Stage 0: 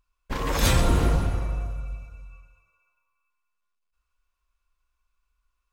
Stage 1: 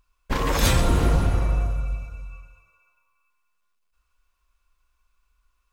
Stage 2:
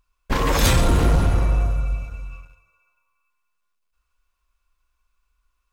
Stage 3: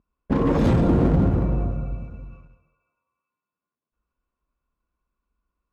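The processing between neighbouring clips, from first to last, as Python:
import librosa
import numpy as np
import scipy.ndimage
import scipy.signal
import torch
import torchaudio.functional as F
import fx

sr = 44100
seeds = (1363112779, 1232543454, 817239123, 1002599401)

y1 = fx.rider(x, sr, range_db=3, speed_s=0.5)
y1 = y1 * librosa.db_to_amplitude(3.5)
y2 = fx.leveller(y1, sr, passes=1)
y3 = fx.bandpass_q(y2, sr, hz=230.0, q=1.2)
y3 = np.clip(y3, -10.0 ** (-21.5 / 20.0), 10.0 ** (-21.5 / 20.0))
y3 = y3 + 10.0 ** (-17.5 / 20.0) * np.pad(y3, (int(208 * sr / 1000.0), 0))[:len(y3)]
y3 = y3 * librosa.db_to_amplitude(8.5)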